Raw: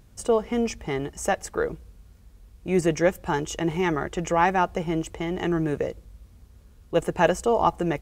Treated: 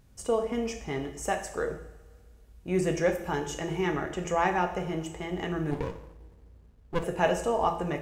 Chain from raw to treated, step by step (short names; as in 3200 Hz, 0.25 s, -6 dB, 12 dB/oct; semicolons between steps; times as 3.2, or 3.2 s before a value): two-slope reverb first 0.68 s, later 2.1 s, from -19 dB, DRR 3.5 dB; 5.71–7.04 running maximum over 33 samples; gain -6 dB